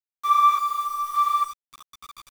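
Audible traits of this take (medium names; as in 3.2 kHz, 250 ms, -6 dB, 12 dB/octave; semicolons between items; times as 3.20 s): random-step tremolo, depth 90%; a quantiser's noise floor 8-bit, dither none; a shimmering, thickened sound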